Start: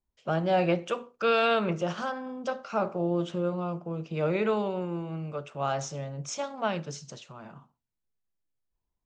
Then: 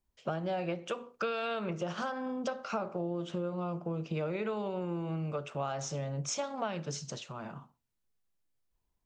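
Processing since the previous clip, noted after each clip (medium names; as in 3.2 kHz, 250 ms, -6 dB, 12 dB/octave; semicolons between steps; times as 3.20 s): compression 12:1, threshold -34 dBFS, peak gain reduction 14.5 dB; trim +3 dB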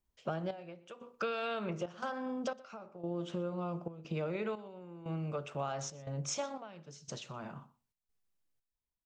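trance gate "xxx...xxxxx." 89 bpm -12 dB; delay 121 ms -21.5 dB; trim -2 dB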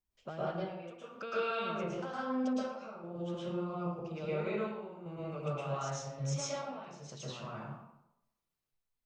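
reverberation RT60 0.85 s, pre-delay 107 ms, DRR -8.5 dB; trim -7.5 dB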